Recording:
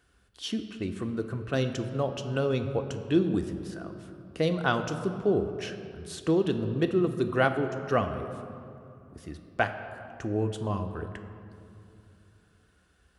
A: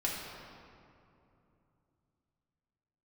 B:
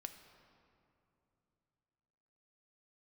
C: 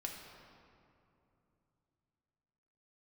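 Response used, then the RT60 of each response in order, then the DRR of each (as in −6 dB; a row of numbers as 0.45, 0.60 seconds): B; 2.8, 3.0, 2.8 seconds; −5.5, 6.0, −1.0 decibels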